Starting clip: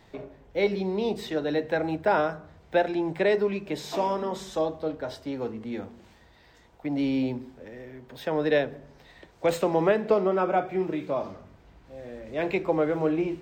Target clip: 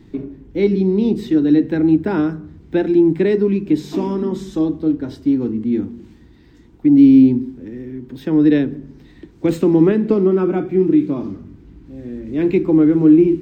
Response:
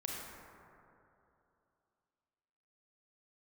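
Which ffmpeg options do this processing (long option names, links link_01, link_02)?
-af "lowshelf=frequency=430:width_type=q:width=3:gain=11.5"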